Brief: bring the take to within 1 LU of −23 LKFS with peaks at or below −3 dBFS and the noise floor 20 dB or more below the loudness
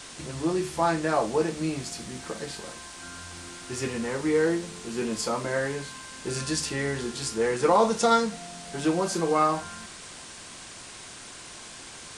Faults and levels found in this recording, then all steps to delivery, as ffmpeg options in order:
background noise floor −44 dBFS; target noise floor −47 dBFS; integrated loudness −27.0 LKFS; sample peak −9.5 dBFS; target loudness −23.0 LKFS
→ -af "afftdn=noise_reduction=6:noise_floor=-44"
-af "volume=4dB"

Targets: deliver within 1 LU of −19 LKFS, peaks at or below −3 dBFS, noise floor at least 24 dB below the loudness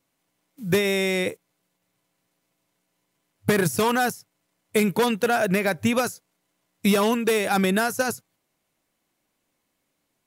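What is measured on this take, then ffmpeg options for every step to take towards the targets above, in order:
integrated loudness −23.0 LKFS; sample peak −9.5 dBFS; target loudness −19.0 LKFS
→ -af "volume=4dB"

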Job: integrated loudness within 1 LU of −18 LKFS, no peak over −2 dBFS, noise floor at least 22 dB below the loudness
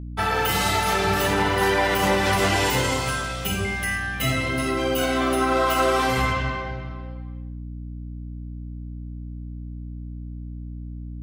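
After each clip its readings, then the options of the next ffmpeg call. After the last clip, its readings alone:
mains hum 60 Hz; hum harmonics up to 300 Hz; level of the hum −32 dBFS; integrated loudness −22.0 LKFS; sample peak −8.0 dBFS; target loudness −18.0 LKFS
→ -af "bandreject=frequency=60:width_type=h:width=6,bandreject=frequency=120:width_type=h:width=6,bandreject=frequency=180:width_type=h:width=6,bandreject=frequency=240:width_type=h:width=6,bandreject=frequency=300:width_type=h:width=6"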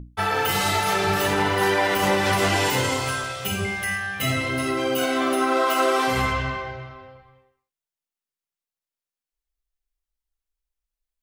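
mains hum none found; integrated loudness −22.0 LKFS; sample peak −8.0 dBFS; target loudness −18.0 LKFS
→ -af "volume=4dB"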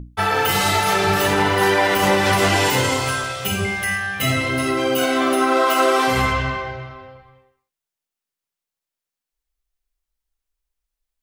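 integrated loudness −18.0 LKFS; sample peak −4.0 dBFS; background noise floor −87 dBFS

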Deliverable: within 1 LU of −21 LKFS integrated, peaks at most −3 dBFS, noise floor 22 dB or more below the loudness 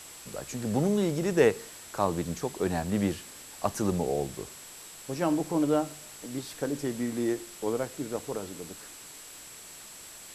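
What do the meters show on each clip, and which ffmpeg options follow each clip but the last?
interfering tone 7,700 Hz; level of the tone −49 dBFS; background noise floor −47 dBFS; target noise floor −53 dBFS; integrated loudness −30.5 LKFS; sample peak −8.5 dBFS; target loudness −21.0 LKFS
→ -af "bandreject=frequency=7700:width=30"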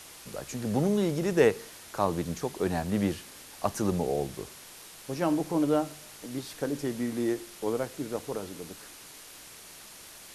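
interfering tone none found; background noise floor −49 dBFS; target noise floor −53 dBFS
→ -af "afftdn=noise_reduction=6:noise_floor=-49"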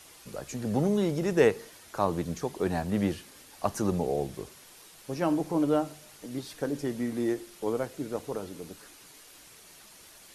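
background noise floor −53 dBFS; integrated loudness −30.0 LKFS; sample peak −8.5 dBFS; target loudness −21.0 LKFS
→ -af "volume=9dB,alimiter=limit=-3dB:level=0:latency=1"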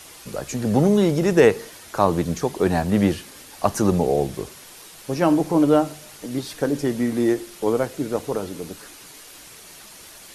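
integrated loudness −21.5 LKFS; sample peak −3.0 dBFS; background noise floor −44 dBFS

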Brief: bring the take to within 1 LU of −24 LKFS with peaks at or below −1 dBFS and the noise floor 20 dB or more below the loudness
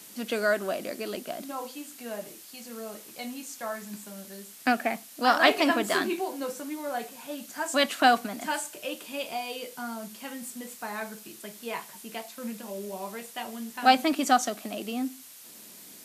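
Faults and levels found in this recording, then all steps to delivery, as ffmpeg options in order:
background noise floor −48 dBFS; target noise floor −50 dBFS; integrated loudness −29.5 LKFS; sample peak −4.0 dBFS; target loudness −24.0 LKFS
→ -af "afftdn=noise_reduction=6:noise_floor=-48"
-af "volume=5.5dB,alimiter=limit=-1dB:level=0:latency=1"

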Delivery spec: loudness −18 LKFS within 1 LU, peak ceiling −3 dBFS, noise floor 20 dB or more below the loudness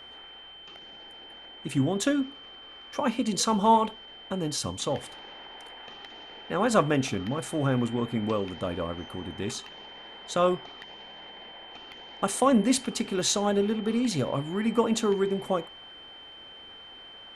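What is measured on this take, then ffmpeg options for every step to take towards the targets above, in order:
interfering tone 3,100 Hz; level of the tone −45 dBFS; integrated loudness −27.5 LKFS; sample peak −9.0 dBFS; target loudness −18.0 LKFS
→ -af "bandreject=frequency=3100:width=30"
-af "volume=9.5dB,alimiter=limit=-3dB:level=0:latency=1"

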